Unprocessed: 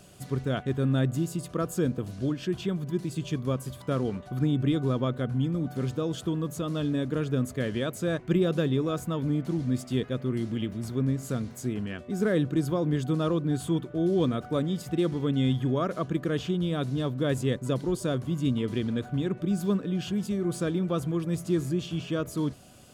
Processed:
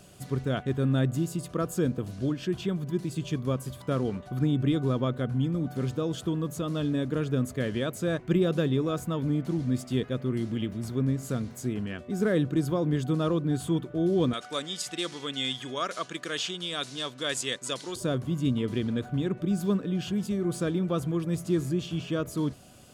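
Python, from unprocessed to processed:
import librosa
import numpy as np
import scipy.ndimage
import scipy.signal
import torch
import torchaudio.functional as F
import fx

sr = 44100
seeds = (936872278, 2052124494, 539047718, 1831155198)

y = fx.weighting(x, sr, curve='ITU-R 468', at=(14.33, 17.96))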